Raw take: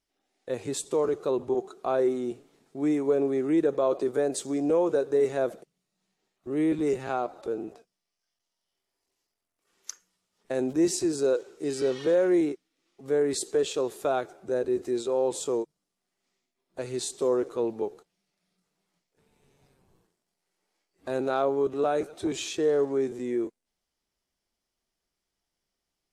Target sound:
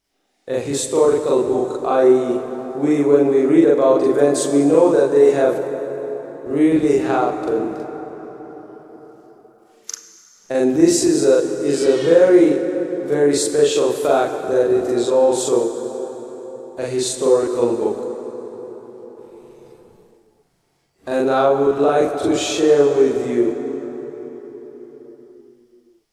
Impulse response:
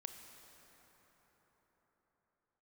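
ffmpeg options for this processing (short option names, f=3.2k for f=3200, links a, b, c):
-filter_complex "[0:a]asplit=2[a][b];[1:a]atrim=start_sample=2205,adelay=42[c];[b][c]afir=irnorm=-1:irlink=0,volume=7dB[d];[a][d]amix=inputs=2:normalize=0,volume=6.5dB"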